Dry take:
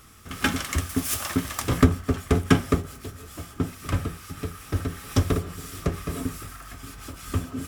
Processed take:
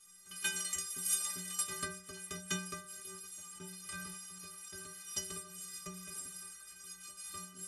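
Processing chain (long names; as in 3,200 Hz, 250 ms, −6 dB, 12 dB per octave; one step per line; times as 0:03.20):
elliptic low-pass filter 11,000 Hz, stop band 60 dB
first-order pre-emphasis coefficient 0.9
stiff-string resonator 180 Hz, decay 0.7 s, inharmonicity 0.03
0:02.84–0:05.01: level that may fall only so fast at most 23 dB per second
level +14 dB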